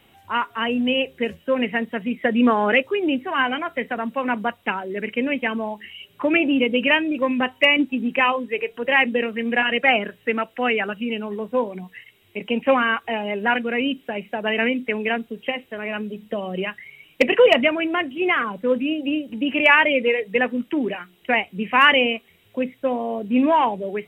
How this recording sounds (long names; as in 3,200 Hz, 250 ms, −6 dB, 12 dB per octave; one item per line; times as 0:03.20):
background noise floor −57 dBFS
spectral slope −1.5 dB per octave